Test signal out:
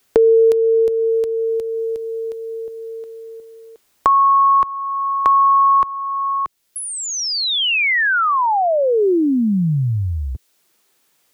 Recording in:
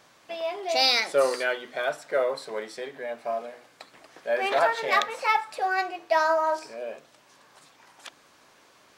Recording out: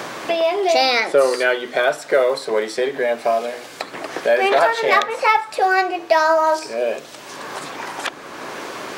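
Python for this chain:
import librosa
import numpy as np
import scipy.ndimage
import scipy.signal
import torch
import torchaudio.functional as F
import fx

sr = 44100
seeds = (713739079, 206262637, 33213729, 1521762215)

y = fx.peak_eq(x, sr, hz=380.0, db=4.5, octaves=0.65)
y = fx.band_squash(y, sr, depth_pct=70)
y = F.gain(torch.from_numpy(y), 8.5).numpy()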